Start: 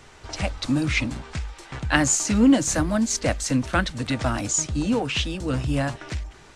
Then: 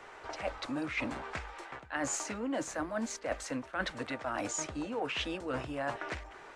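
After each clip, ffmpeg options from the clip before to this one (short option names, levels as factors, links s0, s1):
-filter_complex "[0:a]acrossover=split=360 2300:gain=0.112 1 0.2[s0][s1][s2];[s0][s1][s2]amix=inputs=3:normalize=0,areverse,acompressor=threshold=0.02:ratio=16,areverse,volume=1.33"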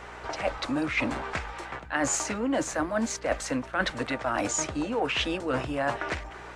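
-af "aeval=exprs='val(0)+0.00141*(sin(2*PI*60*n/s)+sin(2*PI*2*60*n/s)/2+sin(2*PI*3*60*n/s)/3+sin(2*PI*4*60*n/s)/4+sin(2*PI*5*60*n/s)/5)':c=same,volume=2.37"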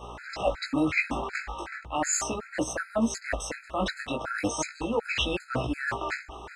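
-af "flanger=delay=16.5:depth=4.1:speed=0.37,afftfilt=real='re*gt(sin(2*PI*2.7*pts/sr)*(1-2*mod(floor(b*sr/1024/1300),2)),0)':imag='im*gt(sin(2*PI*2.7*pts/sr)*(1-2*mod(floor(b*sr/1024/1300),2)),0)':win_size=1024:overlap=0.75,volume=1.88"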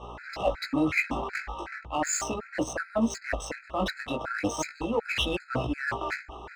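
-af "adynamicsmooth=sensitivity=7.5:basefreq=4500"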